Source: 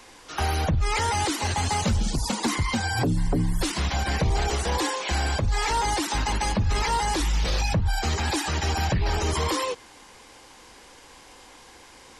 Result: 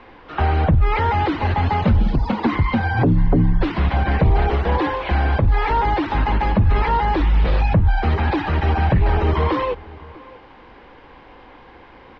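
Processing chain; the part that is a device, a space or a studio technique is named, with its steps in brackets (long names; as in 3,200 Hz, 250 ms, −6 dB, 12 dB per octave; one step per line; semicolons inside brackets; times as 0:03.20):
high-frequency loss of the air 160 metres
shout across a valley (high-frequency loss of the air 390 metres; slap from a distant wall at 110 metres, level −21 dB)
level +8.5 dB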